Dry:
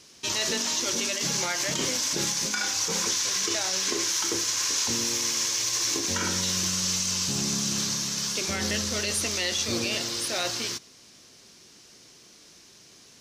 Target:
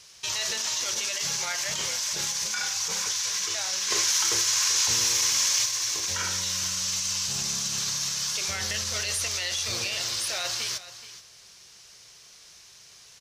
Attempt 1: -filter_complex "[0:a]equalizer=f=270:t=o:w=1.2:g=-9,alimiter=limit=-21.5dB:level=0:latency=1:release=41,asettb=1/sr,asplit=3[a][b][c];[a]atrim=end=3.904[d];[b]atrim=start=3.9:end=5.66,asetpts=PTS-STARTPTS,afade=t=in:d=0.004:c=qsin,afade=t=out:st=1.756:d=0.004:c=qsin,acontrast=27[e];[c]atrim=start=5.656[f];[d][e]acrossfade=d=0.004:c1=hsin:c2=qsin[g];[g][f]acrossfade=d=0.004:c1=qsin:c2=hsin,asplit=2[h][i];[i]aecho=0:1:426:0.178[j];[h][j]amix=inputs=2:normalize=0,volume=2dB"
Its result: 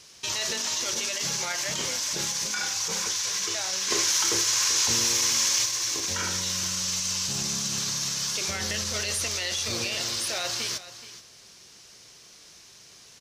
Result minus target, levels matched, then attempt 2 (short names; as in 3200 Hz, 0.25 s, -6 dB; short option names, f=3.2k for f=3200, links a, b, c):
250 Hz band +7.0 dB
-filter_complex "[0:a]equalizer=f=270:t=o:w=1.2:g=-20.5,alimiter=limit=-21.5dB:level=0:latency=1:release=41,asettb=1/sr,asplit=3[a][b][c];[a]atrim=end=3.904[d];[b]atrim=start=3.9:end=5.66,asetpts=PTS-STARTPTS,afade=t=in:d=0.004:c=qsin,afade=t=out:st=1.756:d=0.004:c=qsin,acontrast=27[e];[c]atrim=start=5.656[f];[d][e]acrossfade=d=0.004:c1=hsin:c2=qsin[g];[g][f]acrossfade=d=0.004:c1=qsin:c2=hsin,asplit=2[h][i];[i]aecho=0:1:426:0.178[j];[h][j]amix=inputs=2:normalize=0,volume=2dB"